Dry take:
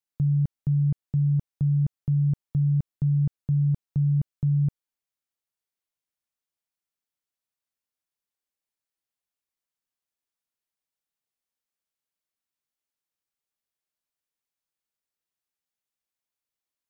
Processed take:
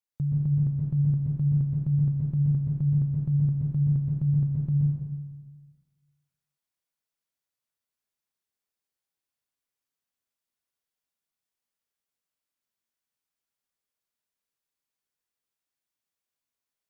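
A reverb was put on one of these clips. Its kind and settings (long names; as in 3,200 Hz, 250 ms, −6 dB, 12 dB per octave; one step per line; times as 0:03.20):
dense smooth reverb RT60 1.5 s, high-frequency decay 0.85×, pre-delay 110 ms, DRR −4 dB
level −4.5 dB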